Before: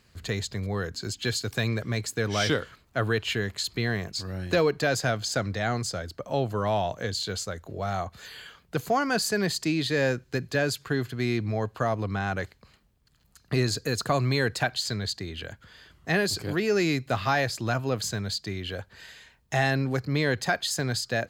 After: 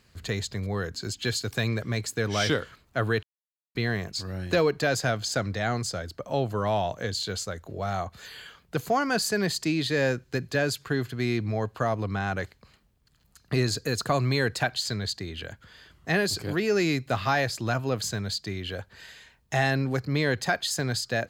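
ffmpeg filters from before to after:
ffmpeg -i in.wav -filter_complex "[0:a]asplit=3[link_01][link_02][link_03];[link_01]atrim=end=3.23,asetpts=PTS-STARTPTS,afade=type=out:start_time=3.226:duration=0.004:curve=hsin[link_04];[link_02]atrim=start=3.23:end=3.75,asetpts=PTS-STARTPTS,volume=0[link_05];[link_03]atrim=start=3.75,asetpts=PTS-STARTPTS,afade=type=in:duration=0.004:curve=hsin[link_06];[link_04][link_05][link_06]concat=n=3:v=0:a=1" out.wav

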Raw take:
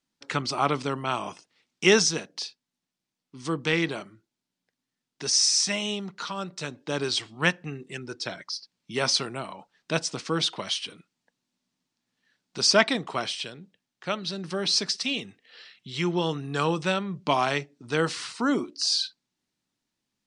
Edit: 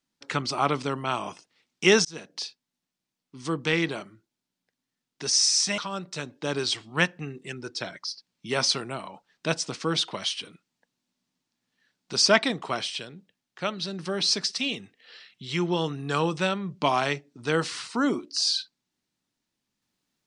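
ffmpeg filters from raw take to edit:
ffmpeg -i in.wav -filter_complex "[0:a]asplit=3[link_01][link_02][link_03];[link_01]atrim=end=2.05,asetpts=PTS-STARTPTS,afade=type=out:start_time=2.046:duration=0.004:curve=hsin[link_04];[link_02]atrim=start=2.05:end=5.782,asetpts=PTS-STARTPTS,afade=type=in:duration=0.29[link_05];[link_03]atrim=start=6.228[link_06];[link_04][link_05]concat=n=2:v=0:a=1[link_07];[link_07][link_06]acrossfade=duration=0.004:curve1=hsin:curve2=hsin" out.wav

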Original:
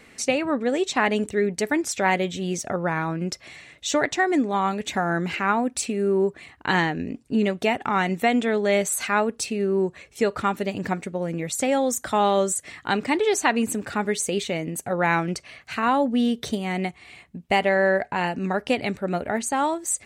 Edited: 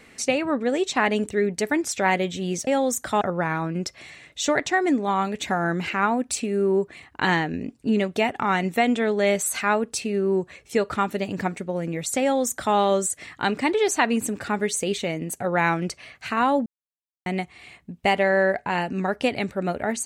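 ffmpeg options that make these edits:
ffmpeg -i in.wav -filter_complex "[0:a]asplit=5[link_01][link_02][link_03][link_04][link_05];[link_01]atrim=end=2.672[link_06];[link_02]atrim=start=11.668:end=12.212[link_07];[link_03]atrim=start=2.668:end=16.12,asetpts=PTS-STARTPTS,afade=type=out:start_time=13.448:duration=0.004:curve=hsin[link_08];[link_04]atrim=start=16.12:end=16.72,asetpts=PTS-STARTPTS,volume=0[link_09];[link_05]atrim=start=16.72,asetpts=PTS-STARTPTS,afade=type=in:duration=0.004:curve=hsin[link_10];[link_06][link_07]acrossfade=duration=0.004:curve1=hsin:curve2=hsin[link_11];[link_08][link_09][link_10]concat=n=3:v=0:a=1[link_12];[link_11][link_12]acrossfade=duration=0.004:curve1=hsin:curve2=hsin" out.wav

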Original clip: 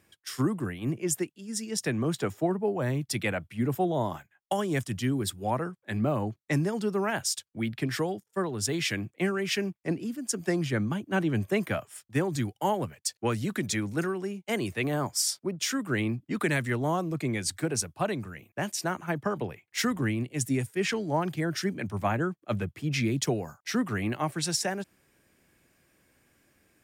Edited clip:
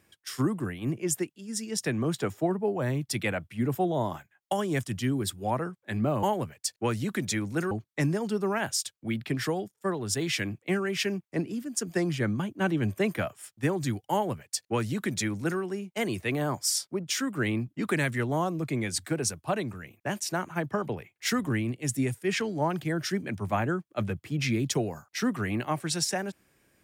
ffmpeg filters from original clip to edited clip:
ffmpeg -i in.wav -filter_complex "[0:a]asplit=3[link_01][link_02][link_03];[link_01]atrim=end=6.232[link_04];[link_02]atrim=start=12.638:end=14.122[link_05];[link_03]atrim=start=6.228[link_06];[link_04][link_05]acrossfade=duration=0.004:curve1=hsin:curve2=hsin[link_07];[link_07][link_06]acrossfade=duration=0.004:curve1=hsin:curve2=hsin" out.wav

